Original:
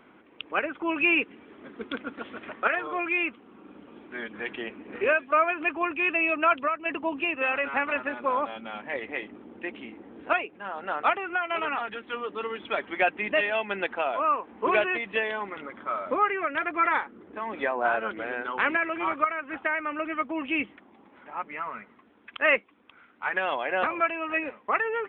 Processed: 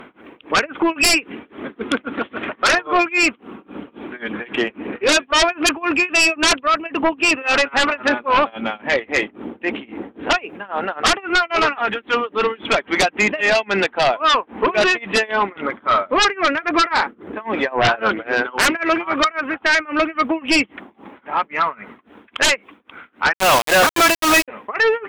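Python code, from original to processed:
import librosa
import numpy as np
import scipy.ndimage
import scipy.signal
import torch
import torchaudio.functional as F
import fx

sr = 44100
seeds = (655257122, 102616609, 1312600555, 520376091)

y = x * (1.0 - 0.96 / 2.0 + 0.96 / 2.0 * np.cos(2.0 * np.pi * 3.7 * (np.arange(len(x)) / sr)))
y = fx.quant_companded(y, sr, bits=2, at=(23.33, 24.48))
y = fx.fold_sine(y, sr, drive_db=14, ceiling_db=-10.5)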